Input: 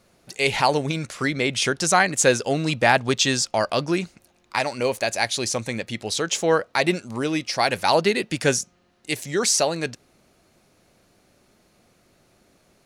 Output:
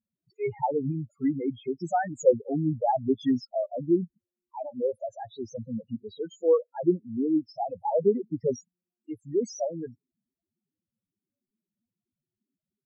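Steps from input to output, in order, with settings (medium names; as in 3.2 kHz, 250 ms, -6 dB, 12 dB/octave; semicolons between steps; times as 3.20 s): loudest bins only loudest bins 4; fifteen-band graphic EQ 100 Hz +4 dB, 250 Hz +6 dB, 2.5 kHz -8 dB; spectral contrast expander 1.5:1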